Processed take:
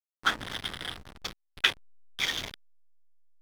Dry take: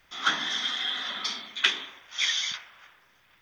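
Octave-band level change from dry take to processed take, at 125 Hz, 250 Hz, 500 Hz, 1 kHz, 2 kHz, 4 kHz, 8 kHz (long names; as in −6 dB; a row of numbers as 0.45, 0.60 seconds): can't be measured, +0.5 dB, +1.5 dB, −2.0 dB, −2.5 dB, −5.5 dB, −7.0 dB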